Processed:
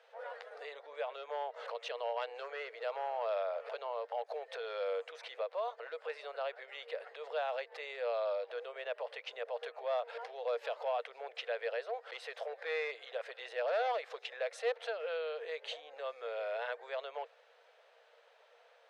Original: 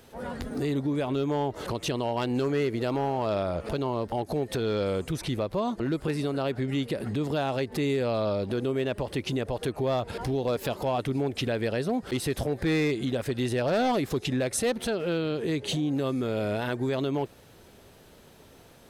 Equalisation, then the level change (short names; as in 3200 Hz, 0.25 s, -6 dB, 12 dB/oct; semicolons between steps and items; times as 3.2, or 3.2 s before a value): rippled Chebyshev high-pass 460 Hz, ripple 3 dB; LPF 3300 Hz 12 dB/oct; -5.0 dB